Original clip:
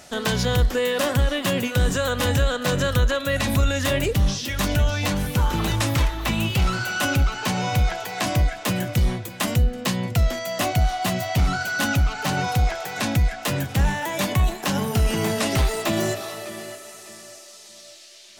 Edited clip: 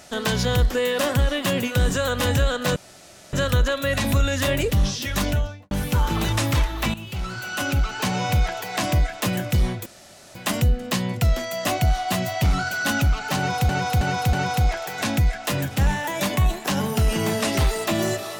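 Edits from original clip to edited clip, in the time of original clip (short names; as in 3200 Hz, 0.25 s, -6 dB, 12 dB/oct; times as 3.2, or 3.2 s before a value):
2.76 insert room tone 0.57 s
4.64–5.14 studio fade out
6.37–7.46 fade in linear, from -15 dB
9.29 insert room tone 0.49 s
12.31–12.63 loop, 4 plays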